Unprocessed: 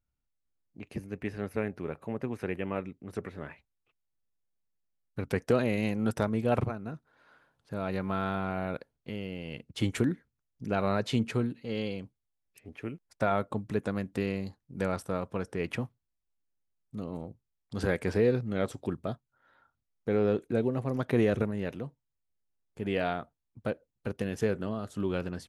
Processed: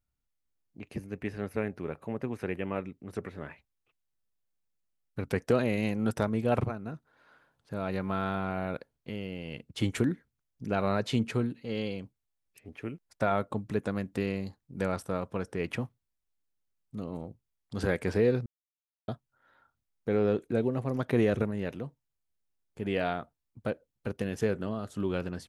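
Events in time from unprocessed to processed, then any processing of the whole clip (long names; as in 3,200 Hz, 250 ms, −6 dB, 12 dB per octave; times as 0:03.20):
0:18.46–0:19.08: silence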